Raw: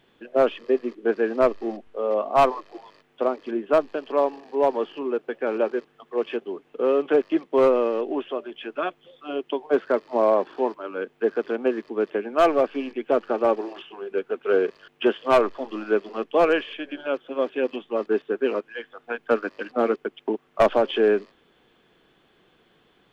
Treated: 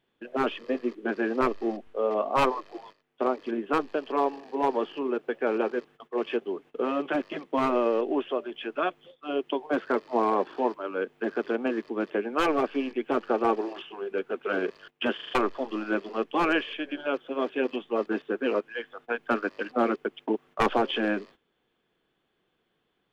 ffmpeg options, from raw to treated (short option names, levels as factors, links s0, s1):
-filter_complex "[0:a]asplit=6[s0][s1][s2][s3][s4][s5];[s0]atrim=end=15.192[s6];[s1]atrim=start=15.148:end=15.192[s7];[s2]atrim=start=15.148:end=15.192[s8];[s3]atrim=start=15.148:end=15.192[s9];[s4]atrim=start=15.148:end=15.192[s10];[s5]atrim=start=15.348[s11];[s6][s7]acrossfade=d=0.004:c1=hsin:c2=hsin[s12];[s12][s8]acrossfade=d=0.004:c1=hsin:c2=hsin[s13];[s13][s9]acrossfade=d=0.004:c1=hsin:c2=hsin[s14];[s14][s10]acrossfade=d=0.004:c1=hsin:c2=hsin[s15];[s15][s11]acrossfade=d=0.004:c1=hsin:c2=hsin,afftfilt=real='re*lt(hypot(re,im),0.708)':imag='im*lt(hypot(re,im),0.708)':win_size=1024:overlap=0.75,agate=range=0.2:threshold=0.00398:ratio=16:detection=peak"